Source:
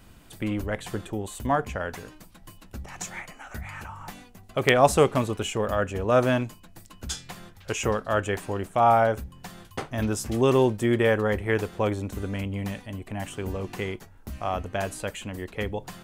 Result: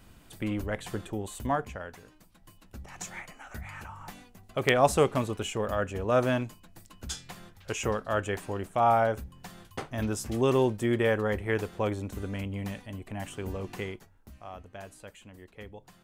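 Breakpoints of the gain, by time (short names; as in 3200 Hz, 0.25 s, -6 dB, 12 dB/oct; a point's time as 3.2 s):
1.44 s -3 dB
1.98 s -11.5 dB
3.09 s -4 dB
13.79 s -4 dB
14.43 s -15 dB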